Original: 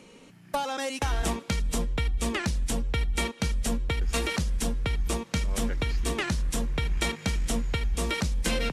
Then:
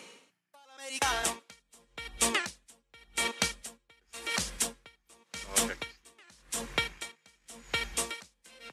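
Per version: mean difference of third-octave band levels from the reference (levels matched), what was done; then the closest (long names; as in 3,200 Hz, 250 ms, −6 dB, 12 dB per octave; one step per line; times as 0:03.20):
13.0 dB: high-pass filter 960 Hz 6 dB per octave
dynamic equaliser 8,500 Hz, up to +4 dB, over −47 dBFS, Q 2.1
tremolo with a sine in dB 0.89 Hz, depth 33 dB
level +7 dB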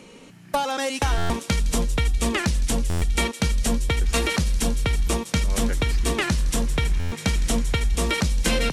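2.0 dB: on a send: delay with a high-pass on its return 162 ms, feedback 79%, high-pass 4,100 Hz, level −11 dB
on the sum: buffer that repeats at 0:01.17/0:02.89/0:06.99, samples 512, times 10
level +5.5 dB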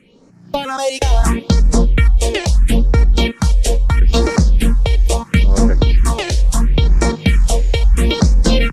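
5.5 dB: automatic gain control gain up to 15 dB
all-pass phaser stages 4, 0.75 Hz, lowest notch 200–3,100 Hz
high-shelf EQ 6,900 Hz −9.5 dB
level +2 dB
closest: second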